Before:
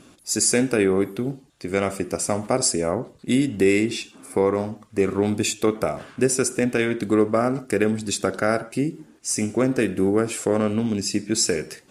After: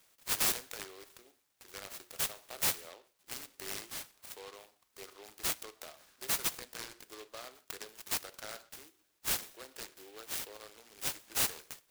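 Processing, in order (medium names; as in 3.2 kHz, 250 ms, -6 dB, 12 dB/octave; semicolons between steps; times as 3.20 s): high-pass 340 Hz 24 dB/octave; differentiator; in parallel at -8 dB: bit crusher 4-bit; on the sum: hard clipper -18 dBFS, distortion -9 dB; delay time shaken by noise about 2.6 kHz, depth 0.11 ms; trim -6.5 dB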